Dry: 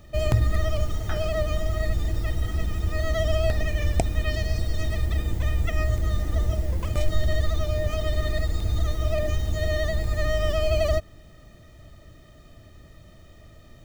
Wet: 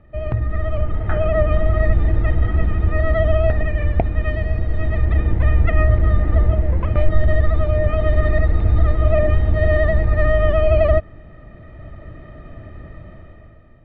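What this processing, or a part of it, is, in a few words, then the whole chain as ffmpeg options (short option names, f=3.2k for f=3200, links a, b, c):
action camera in a waterproof case: -filter_complex "[0:a]asettb=1/sr,asplit=3[a][b][c];[a]atrim=end=0.864[d];[b]atrim=start=0.86:end=1.51,asetpts=PTS-STARTPTS,afade=t=in:d=0.004:c=qsin,afade=t=out:st=0.646:d=0.004:c=qsin,equalizer=f=4.8k:t=o:w=0.6:g=-6[e];[c]atrim=start=1.506[f];[d][e]acrossfade=d=0.004:c1=hsin:c2=qsin[g];[g][f]acrossfade=d=0.004:c1=qsin:c2=hsin,lowpass=f=2.2k:w=0.5412,lowpass=f=2.2k:w=1.3066,dynaudnorm=f=220:g=7:m=13.5dB,volume=-1dB" -ar 44100 -c:a aac -b:a 64k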